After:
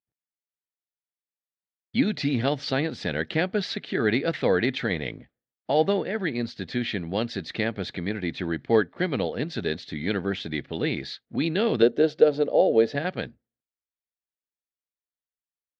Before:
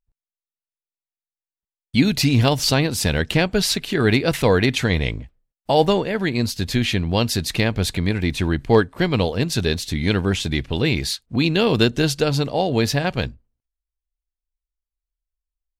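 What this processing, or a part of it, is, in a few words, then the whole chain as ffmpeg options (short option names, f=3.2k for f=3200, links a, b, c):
kitchen radio: -filter_complex "[0:a]asettb=1/sr,asplit=3[a][b][c];[a]atrim=end=11.824[d];[b]atrim=start=11.82:end=12.95,asetpts=PTS-STARTPTS,afade=t=in:d=0.004:c=qsin,afade=t=out:st=1.126:d=0.004:c=qsin,equalizer=f=125:t=o:w=1:g=-11,equalizer=f=500:t=o:w=1:g=11,equalizer=f=1k:t=o:w=1:g=-4,equalizer=f=2k:t=o:w=1:g=-5,equalizer=f=4k:t=o:w=1:g=-4,equalizer=f=8k:t=o:w=1:g=-4[e];[c]atrim=start=12.946[f];[d][e]acrossfade=d=0.004:c1=hsin:c2=qsin[g];[g][f]acrossfade=d=0.004:c1=qsin:c2=hsin,highpass=190,equalizer=f=1k:t=q:w=4:g=-9,equalizer=f=1.8k:t=q:w=4:g=3,equalizer=f=2.7k:t=q:w=4:g=-7,lowpass=f=3.8k:w=0.5412,lowpass=f=3.8k:w=1.3066,volume=-4.5dB"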